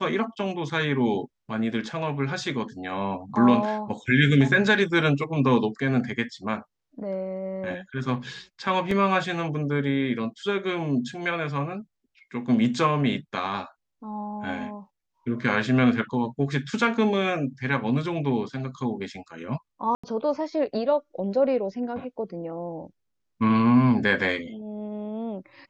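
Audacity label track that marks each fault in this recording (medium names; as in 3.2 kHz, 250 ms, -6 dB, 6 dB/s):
8.910000	8.910000	dropout 3 ms
19.950000	20.040000	dropout 85 ms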